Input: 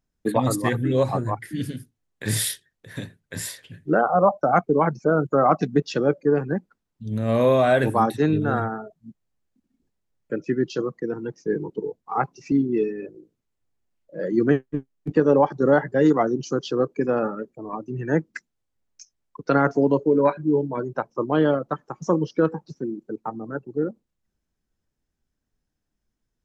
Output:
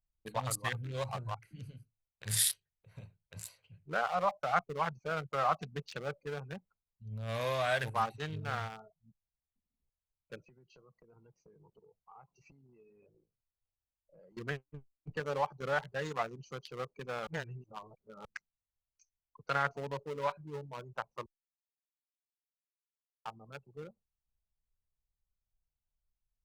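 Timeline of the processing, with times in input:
0:10.41–0:14.37: downward compressor 5 to 1, threshold −38 dBFS
0:17.27–0:18.25: reverse
0:21.26–0:23.25: silence
whole clip: adaptive Wiener filter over 25 samples; guitar amp tone stack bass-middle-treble 10-0-10

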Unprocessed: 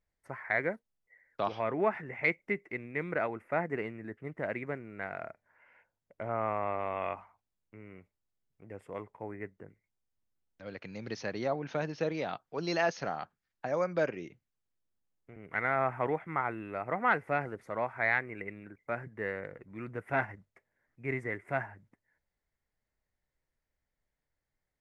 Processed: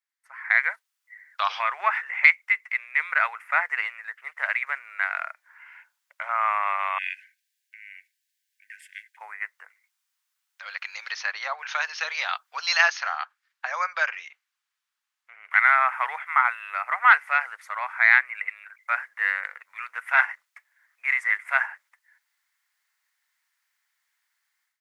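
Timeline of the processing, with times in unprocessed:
0:06.98–0:09.17: linear-phase brick-wall band-stop 230–1,500 Hz
0:11.12–0:11.59: high-shelf EQ 3,700 Hz −9.5 dB
0:12.88–0:15.51: low-pass filter 3,500 Hz 6 dB per octave
whole clip: inverse Chebyshev high-pass filter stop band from 330 Hz, stop band 60 dB; automatic gain control gain up to 16 dB

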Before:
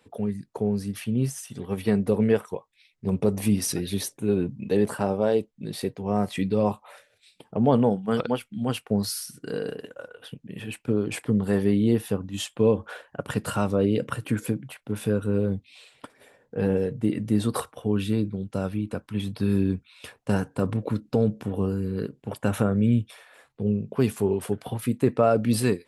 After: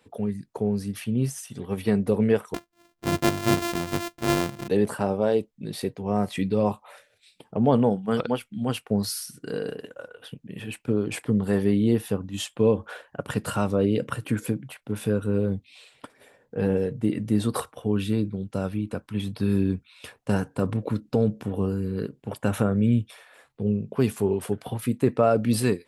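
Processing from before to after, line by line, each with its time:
0:02.54–0:04.68: samples sorted by size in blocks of 128 samples

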